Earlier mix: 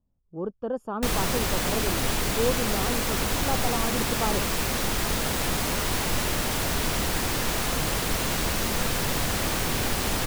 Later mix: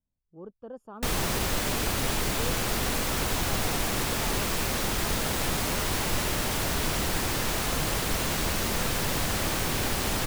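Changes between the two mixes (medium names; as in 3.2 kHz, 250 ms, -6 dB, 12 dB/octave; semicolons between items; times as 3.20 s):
speech -12.0 dB; reverb: off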